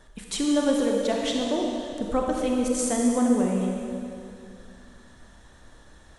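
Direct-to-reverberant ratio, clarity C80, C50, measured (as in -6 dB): -0.5 dB, 1.5 dB, 0.5 dB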